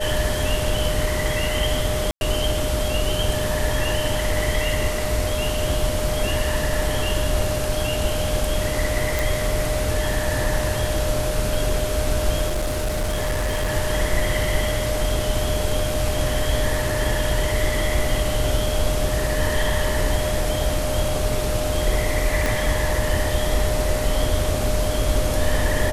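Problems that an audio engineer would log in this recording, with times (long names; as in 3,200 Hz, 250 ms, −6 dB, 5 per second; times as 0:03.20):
whistle 610 Hz −26 dBFS
0:02.11–0:02.21: drop-out 101 ms
0:09.19: click
0:12.48–0:13.72: clipping −19 dBFS
0:22.46: click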